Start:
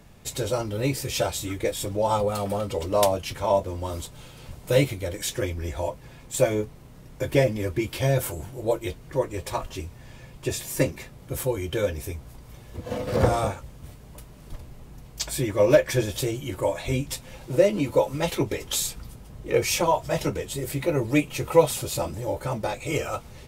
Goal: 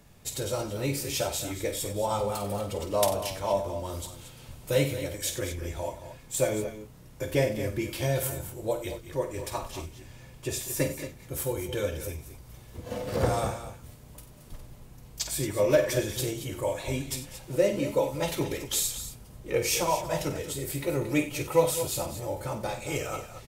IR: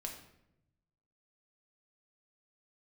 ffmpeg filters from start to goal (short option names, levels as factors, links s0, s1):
-filter_complex "[0:a]highshelf=f=5200:g=6,asplit=2[s0][s1];[s1]aecho=0:1:50|92|194|226:0.335|0.211|0.126|0.266[s2];[s0][s2]amix=inputs=2:normalize=0,volume=0.531"